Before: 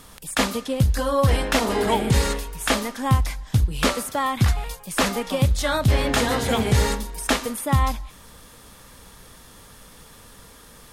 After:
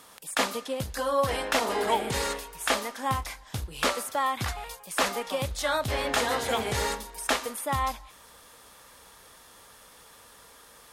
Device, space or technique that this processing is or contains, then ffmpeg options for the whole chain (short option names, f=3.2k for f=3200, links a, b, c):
filter by subtraction: -filter_complex "[0:a]asplit=2[a][b];[b]lowpass=690,volume=-1[c];[a][c]amix=inputs=2:normalize=0,asettb=1/sr,asplit=3[d][e][f];[d]atrim=end=2.924[g];[e]atrim=start=2.92:end=3.87,asetpts=PTS-STARTPTS,afade=t=in:d=0.004:c=qsin,afade=t=out:st=0.946:d=0.004:c=qsin,asplit=2[h][i];[i]adelay=30,volume=-12dB[j];[h][j]amix=inputs=2:normalize=0,atrim=end_sample=41895[k];[f]atrim=start=3.866[l];[g][k]acrossfade=d=0.004:c1=hsin:c2=qsin[m];[m][l]acrossfade=d=0.004:c1=qsin:c2=hsin,asubboost=boost=3:cutoff=90,volume=-4.5dB"